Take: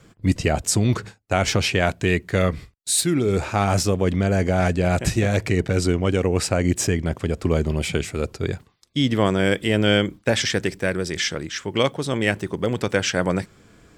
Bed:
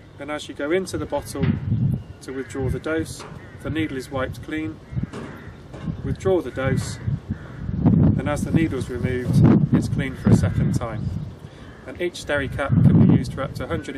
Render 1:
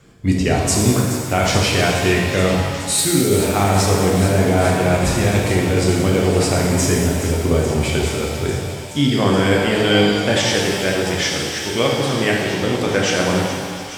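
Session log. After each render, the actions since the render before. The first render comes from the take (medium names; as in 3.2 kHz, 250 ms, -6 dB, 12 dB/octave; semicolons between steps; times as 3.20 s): feedback echo behind a high-pass 424 ms, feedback 83%, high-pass 2.5 kHz, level -12 dB; pitch-shifted reverb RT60 1.7 s, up +7 st, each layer -8 dB, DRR -2 dB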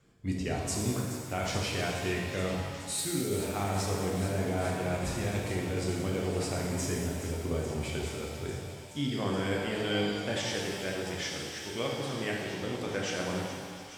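trim -15.5 dB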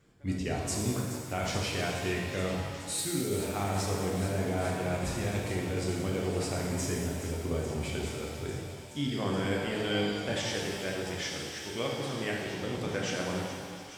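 add bed -28 dB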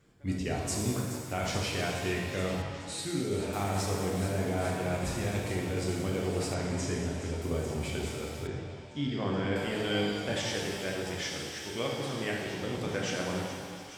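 2.62–3.53 s: distance through air 61 m; 6.54–7.42 s: low-pass 6.9 kHz; 8.47–9.56 s: distance through air 130 m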